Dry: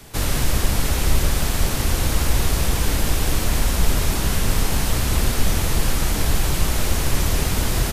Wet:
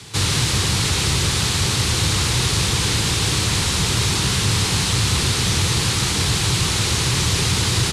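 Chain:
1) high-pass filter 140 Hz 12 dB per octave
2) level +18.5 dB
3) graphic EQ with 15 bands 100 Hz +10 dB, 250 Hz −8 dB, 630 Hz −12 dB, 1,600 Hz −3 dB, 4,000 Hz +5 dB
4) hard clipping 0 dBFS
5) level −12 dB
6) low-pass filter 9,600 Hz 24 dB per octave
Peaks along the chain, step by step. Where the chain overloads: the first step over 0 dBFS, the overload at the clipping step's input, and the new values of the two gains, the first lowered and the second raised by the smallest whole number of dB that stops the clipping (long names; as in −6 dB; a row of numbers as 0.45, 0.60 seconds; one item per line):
−11.5, +7.0, +8.0, 0.0, −12.0, −10.0 dBFS
step 2, 8.0 dB
step 2 +10.5 dB, step 5 −4 dB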